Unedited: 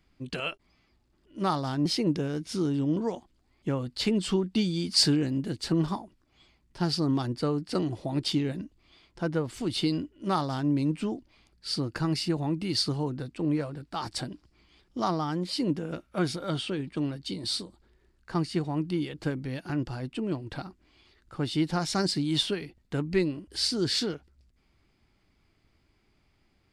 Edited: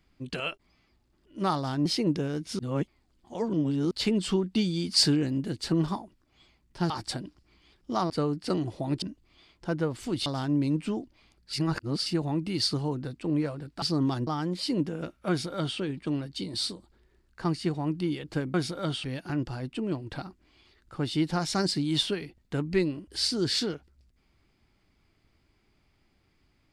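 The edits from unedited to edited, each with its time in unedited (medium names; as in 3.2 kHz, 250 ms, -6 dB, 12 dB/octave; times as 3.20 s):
2.59–3.91 s: reverse
6.90–7.35 s: swap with 13.97–15.17 s
8.27–8.56 s: delete
9.80–10.41 s: delete
11.68–12.21 s: reverse
16.19–16.69 s: copy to 19.44 s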